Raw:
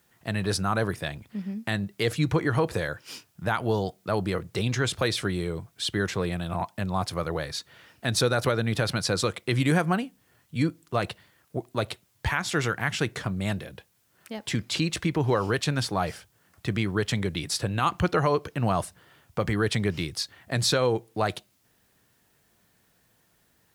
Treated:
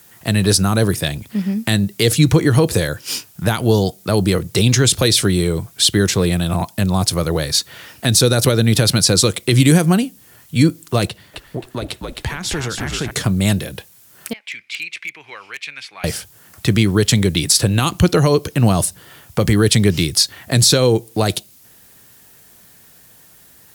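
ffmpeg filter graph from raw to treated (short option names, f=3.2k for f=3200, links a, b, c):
-filter_complex "[0:a]asettb=1/sr,asplit=3[a][b][c];[a]atrim=end=11.074[d];[b]atrim=start=11.07:end=13.11,asetpts=PTS-STARTPTS,afade=t=in:d=0.004:c=qsin,afade=t=out:st=2.036:d=0.004:c=qsin,highshelf=f=5.2k:g=-9,acompressor=threshold=-38dB:ratio=2:attack=3.2:release=140:knee=1:detection=peak,asplit=6[e][f][g][h][i][j];[f]adelay=264,afreqshift=-62,volume=-4.5dB[k];[g]adelay=528,afreqshift=-124,volume=-12.7dB[l];[h]adelay=792,afreqshift=-186,volume=-20.9dB[m];[i]adelay=1056,afreqshift=-248,volume=-29dB[n];[j]adelay=1320,afreqshift=-310,volume=-37.2dB[o];[e][k][l][m][n][o]amix=inputs=6:normalize=0,atrim=end_sample=89964[p];[c]atrim=start=13.106[q];[d][p]acrossfade=d=0.004:c1=hsin:c2=qsin[r];[r][q]acrossfade=d=0.004:c1=qsin:c2=hsin,asettb=1/sr,asplit=3[s][t][u];[s]atrim=end=14.334[v];[t]atrim=start=14.33:end=16.04,asetpts=PTS-STARTPTS,afade=t=in:d=0.004:c=qsin,afade=t=out:st=1.706:d=0.004:c=qsin,bandpass=f=2.3k:t=q:w=7.1,volume=30.5dB,asoftclip=hard,volume=-30.5dB[w];[u]atrim=start=16.036[x];[v][w]acrossfade=d=0.004:c1=hsin:c2=qsin[y];[y][x]acrossfade=d=0.004:c1=qsin:c2=hsin,aemphasis=mode=production:type=cd,acrossover=split=480|3000[z][aa][ab];[aa]acompressor=threshold=-46dB:ratio=2[ac];[z][ac][ab]amix=inputs=3:normalize=0,alimiter=level_in=14.5dB:limit=-1dB:release=50:level=0:latency=1,volume=-1dB"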